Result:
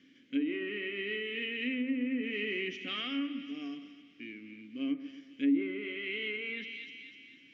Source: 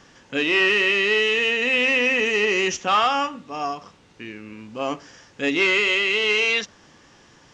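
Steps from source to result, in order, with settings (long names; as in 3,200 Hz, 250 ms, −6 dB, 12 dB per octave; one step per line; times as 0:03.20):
formant filter i
echo with a time of its own for lows and highs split 1,400 Hz, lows 132 ms, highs 251 ms, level −13 dB
treble cut that deepens with the level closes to 920 Hz, closed at −27 dBFS
level +1.5 dB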